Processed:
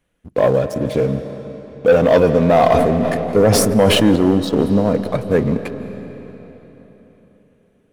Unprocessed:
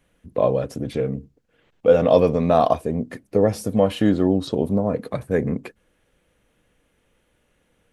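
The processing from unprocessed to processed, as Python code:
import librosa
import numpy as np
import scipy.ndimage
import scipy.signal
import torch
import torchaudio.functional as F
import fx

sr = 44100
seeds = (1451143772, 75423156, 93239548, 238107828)

y = fx.leveller(x, sr, passes=2)
y = fx.rev_freeverb(y, sr, rt60_s=3.9, hf_ratio=0.85, predelay_ms=120, drr_db=10.0)
y = fx.sustainer(y, sr, db_per_s=24.0, at=(2.5, 4.16))
y = y * 10.0 ** (-1.0 / 20.0)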